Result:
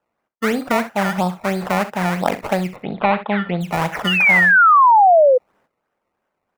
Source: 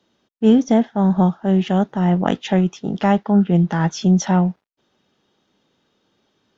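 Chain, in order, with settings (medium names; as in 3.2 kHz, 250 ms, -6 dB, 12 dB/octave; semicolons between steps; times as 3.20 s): decimation with a swept rate 19×, swing 100% 3 Hz; 1.17–1.62 s: band-stop 2.9 kHz, Q 12; 2.76–3.61 s: Chebyshev low-pass 3.8 kHz, order 5; early reflections 39 ms -15.5 dB, 66 ms -15.5 dB; 4.07–5.38 s: painted sound fall 490–3000 Hz -12 dBFS; compression 3:1, threshold -16 dBFS, peak gain reduction 8 dB; gate -55 dBFS, range -11 dB; high-order bell 1.1 kHz +10 dB 2.6 oct; trim -4 dB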